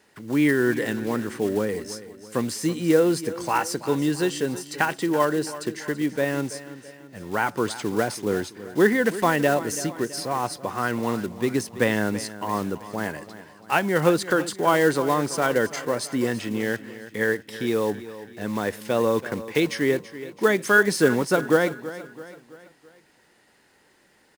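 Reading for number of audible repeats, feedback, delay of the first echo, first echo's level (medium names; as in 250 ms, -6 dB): 4, 48%, 331 ms, -15.0 dB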